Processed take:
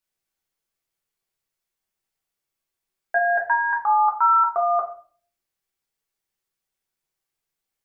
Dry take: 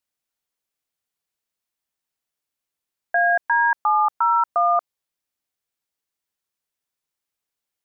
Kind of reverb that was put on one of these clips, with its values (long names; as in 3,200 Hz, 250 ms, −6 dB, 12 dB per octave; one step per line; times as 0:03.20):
rectangular room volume 33 cubic metres, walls mixed, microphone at 0.67 metres
level −2.5 dB